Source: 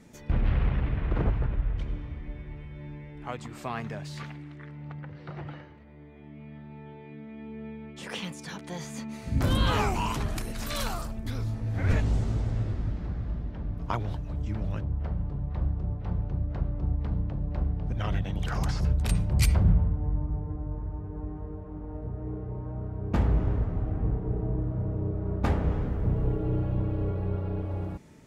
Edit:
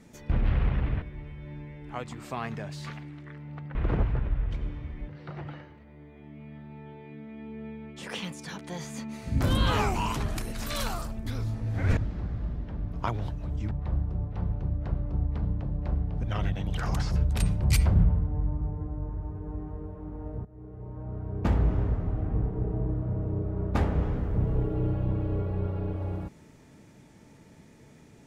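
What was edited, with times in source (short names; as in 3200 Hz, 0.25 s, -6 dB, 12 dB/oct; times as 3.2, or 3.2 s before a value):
1.02–2.35 move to 5.08
11.97–12.83 cut
14.57–15.4 cut
22.14–22.95 fade in, from -18.5 dB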